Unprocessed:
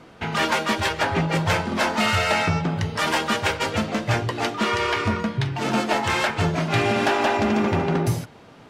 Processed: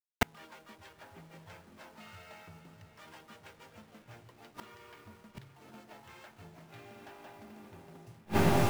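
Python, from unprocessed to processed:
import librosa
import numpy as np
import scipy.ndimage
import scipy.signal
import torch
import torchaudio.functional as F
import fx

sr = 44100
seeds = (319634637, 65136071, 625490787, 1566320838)

y = fx.delta_hold(x, sr, step_db=-28.0)
y = fx.echo_diffused(y, sr, ms=596, feedback_pct=50, wet_db=-12)
y = fx.gate_flip(y, sr, shuts_db=-20.0, range_db=-38)
y = F.gain(torch.from_numpy(y), 7.0).numpy()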